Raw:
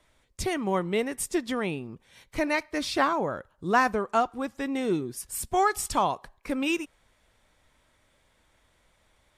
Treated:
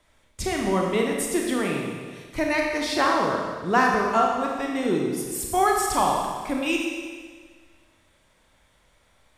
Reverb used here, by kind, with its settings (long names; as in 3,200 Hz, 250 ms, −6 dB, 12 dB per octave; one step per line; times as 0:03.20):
four-comb reverb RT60 1.6 s, combs from 28 ms, DRR −0.5 dB
level +1 dB